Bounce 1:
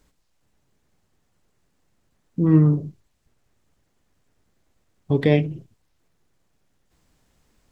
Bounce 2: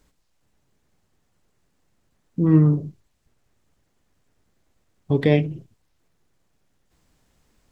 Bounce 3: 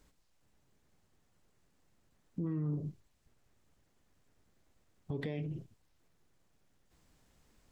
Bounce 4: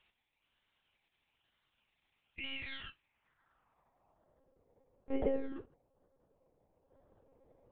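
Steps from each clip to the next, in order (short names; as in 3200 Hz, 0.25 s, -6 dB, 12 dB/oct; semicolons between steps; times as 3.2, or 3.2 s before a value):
nothing audible
compressor, threshold -23 dBFS, peak gain reduction 12.5 dB; limiter -24.5 dBFS, peak gain reduction 10.5 dB; gain -4 dB
decimation with a swept rate 24×, swing 60% 1.1 Hz; band-pass sweep 2900 Hz -> 490 Hz, 2.9–4.46; monotone LPC vocoder at 8 kHz 270 Hz; gain +12 dB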